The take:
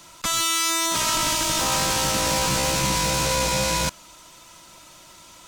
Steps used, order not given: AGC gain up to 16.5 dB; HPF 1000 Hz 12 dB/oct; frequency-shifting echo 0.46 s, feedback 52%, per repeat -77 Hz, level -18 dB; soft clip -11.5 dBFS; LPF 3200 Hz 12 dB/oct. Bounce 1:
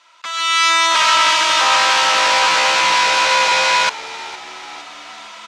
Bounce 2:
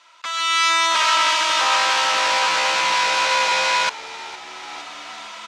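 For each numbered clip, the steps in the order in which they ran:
HPF > frequency-shifting echo > soft clip > LPF > AGC; soft clip > HPF > frequency-shifting echo > AGC > LPF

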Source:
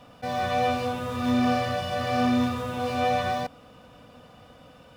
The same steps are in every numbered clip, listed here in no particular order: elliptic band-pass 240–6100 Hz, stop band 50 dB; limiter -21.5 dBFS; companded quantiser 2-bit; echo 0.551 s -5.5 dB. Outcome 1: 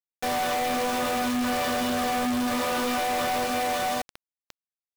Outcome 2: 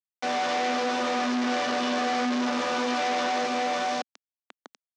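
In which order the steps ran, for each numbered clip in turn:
echo > limiter > elliptic band-pass > companded quantiser; echo > companded quantiser > limiter > elliptic band-pass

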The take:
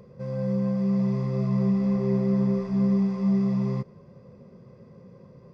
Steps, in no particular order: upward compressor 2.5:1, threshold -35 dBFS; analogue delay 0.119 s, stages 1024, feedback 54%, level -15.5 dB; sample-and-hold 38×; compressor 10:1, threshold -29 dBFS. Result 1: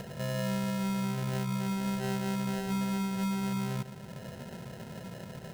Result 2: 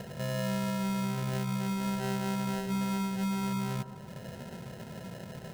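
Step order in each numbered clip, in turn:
analogue delay > sample-and-hold > upward compressor > compressor; upward compressor > sample-and-hold > analogue delay > compressor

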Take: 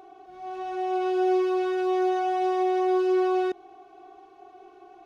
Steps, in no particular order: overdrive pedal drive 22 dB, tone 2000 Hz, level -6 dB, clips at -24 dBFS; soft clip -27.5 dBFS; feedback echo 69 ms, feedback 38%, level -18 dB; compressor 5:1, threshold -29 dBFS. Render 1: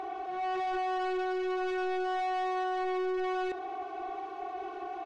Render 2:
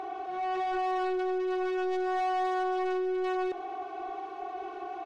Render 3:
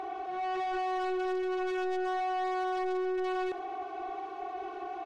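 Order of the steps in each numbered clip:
compressor > feedback echo > overdrive pedal > soft clip; soft clip > compressor > overdrive pedal > feedback echo; overdrive pedal > feedback echo > soft clip > compressor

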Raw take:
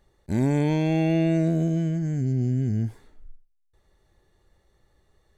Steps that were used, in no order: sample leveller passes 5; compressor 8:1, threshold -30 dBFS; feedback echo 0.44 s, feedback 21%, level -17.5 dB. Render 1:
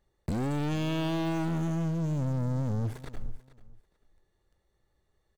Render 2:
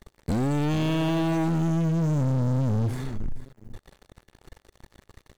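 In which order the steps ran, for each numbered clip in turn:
sample leveller > compressor > feedback echo; compressor > feedback echo > sample leveller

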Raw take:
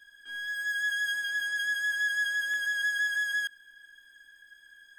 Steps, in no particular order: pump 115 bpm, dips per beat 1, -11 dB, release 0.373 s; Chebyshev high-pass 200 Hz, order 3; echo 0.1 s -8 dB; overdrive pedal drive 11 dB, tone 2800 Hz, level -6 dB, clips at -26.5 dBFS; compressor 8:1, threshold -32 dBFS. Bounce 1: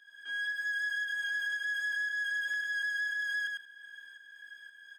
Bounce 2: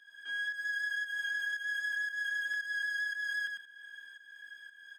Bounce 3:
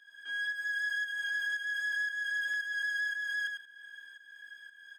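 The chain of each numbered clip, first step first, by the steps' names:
pump > echo > compressor > overdrive pedal > Chebyshev high-pass; overdrive pedal > echo > pump > compressor > Chebyshev high-pass; compressor > echo > pump > overdrive pedal > Chebyshev high-pass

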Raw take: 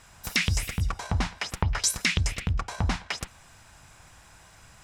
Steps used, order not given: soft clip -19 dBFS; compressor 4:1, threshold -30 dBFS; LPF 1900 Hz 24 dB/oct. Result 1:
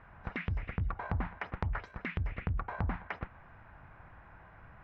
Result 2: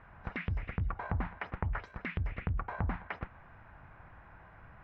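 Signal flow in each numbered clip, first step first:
compressor > LPF > soft clip; compressor > soft clip > LPF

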